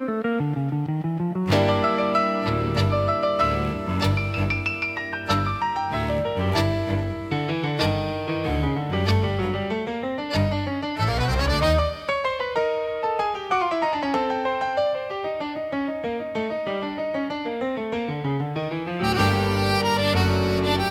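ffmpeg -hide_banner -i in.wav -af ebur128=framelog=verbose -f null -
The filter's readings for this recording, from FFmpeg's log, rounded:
Integrated loudness:
  I:         -23.9 LUFS
  Threshold: -33.9 LUFS
Loudness range:
  LRA:         4.3 LU
  Threshold: -44.2 LUFS
  LRA low:   -26.7 LUFS
  LRA high:  -22.4 LUFS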